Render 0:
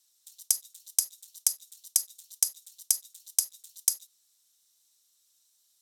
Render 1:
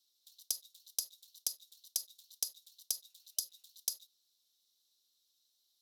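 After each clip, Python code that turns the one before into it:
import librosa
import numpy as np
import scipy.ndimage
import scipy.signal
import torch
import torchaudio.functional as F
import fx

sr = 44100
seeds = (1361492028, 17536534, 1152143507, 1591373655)

y = fx.graphic_eq(x, sr, hz=(125, 250, 500, 1000, 2000, 4000, 8000), db=(-4, 4, 4, -3, -10, 11, -10))
y = fx.spec_repair(y, sr, seeds[0], start_s=3.06, length_s=0.57, low_hz=610.0, high_hz=3000.0, source='after')
y = y * librosa.db_to_amplitude(-7.0)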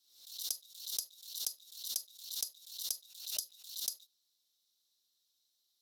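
y = fx.pre_swell(x, sr, db_per_s=84.0)
y = y * librosa.db_to_amplitude(-2.0)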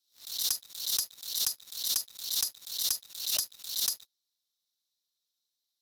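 y = fx.leveller(x, sr, passes=3)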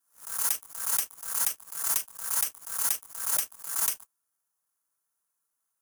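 y = fx.bit_reversed(x, sr, seeds[1], block=16)
y = fx.band_shelf(y, sr, hz=3400.0, db=-10.0, octaves=1.7)
y = y * librosa.db_to_amplitude(4.0)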